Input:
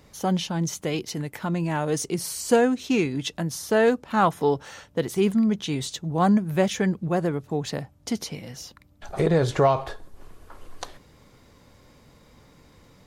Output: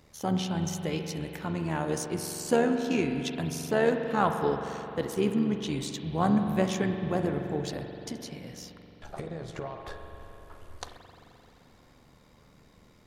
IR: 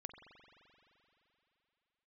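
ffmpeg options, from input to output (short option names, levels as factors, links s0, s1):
-filter_complex "[0:a]asettb=1/sr,asplit=3[s0][s1][s2];[s0]atrim=end=7.944[s3];[s1]atrim=start=7.94:end=9.86,asetpts=PTS-STARTPTS,afade=t=in:d=0.004:c=qsin,afade=t=out:st=1.916:d=0.004:c=qsin,acompressor=threshold=0.0316:ratio=8[s4];[s2]atrim=start=9.856[s5];[s3][s4]acrossfade=d=0.004:c1=hsin:c2=qsin[s6];[s6][s5]acrossfade=d=0.004:c1=qsin:c2=hsin,tremolo=f=76:d=0.621[s7];[1:a]atrim=start_sample=2205[s8];[s7][s8]afir=irnorm=-1:irlink=0,volume=1.41"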